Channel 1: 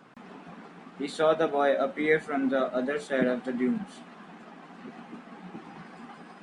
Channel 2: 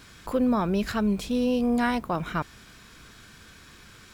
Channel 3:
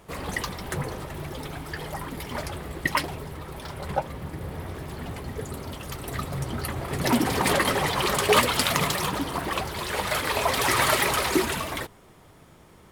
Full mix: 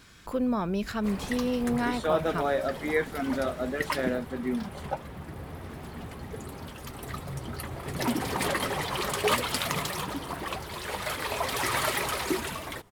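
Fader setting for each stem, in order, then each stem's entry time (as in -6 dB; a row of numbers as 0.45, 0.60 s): -3.0, -4.0, -6.0 dB; 0.85, 0.00, 0.95 s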